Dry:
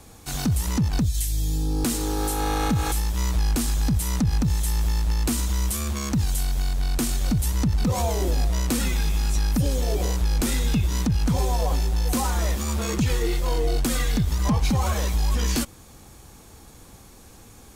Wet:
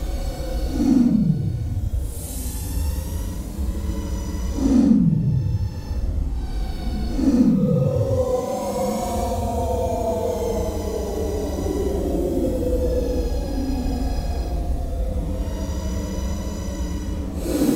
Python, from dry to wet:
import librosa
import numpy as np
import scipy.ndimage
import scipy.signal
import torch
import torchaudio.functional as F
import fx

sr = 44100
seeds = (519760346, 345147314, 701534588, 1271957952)

y = fx.paulstretch(x, sr, seeds[0], factor=12.0, window_s=0.05, from_s=7.24)
y = fx.low_shelf(y, sr, hz=190.0, db=3.0)
y = fx.small_body(y, sr, hz=(280.0, 500.0), ring_ms=25, db=15)
y = y * librosa.db_to_amplitude(-7.0)